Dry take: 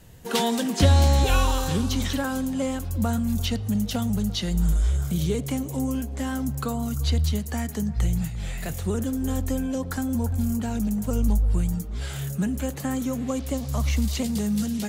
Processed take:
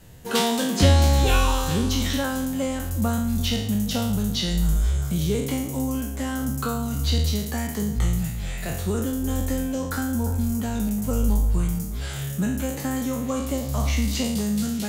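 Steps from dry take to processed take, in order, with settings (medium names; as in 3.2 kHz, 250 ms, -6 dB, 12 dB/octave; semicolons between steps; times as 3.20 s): spectral sustain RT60 0.69 s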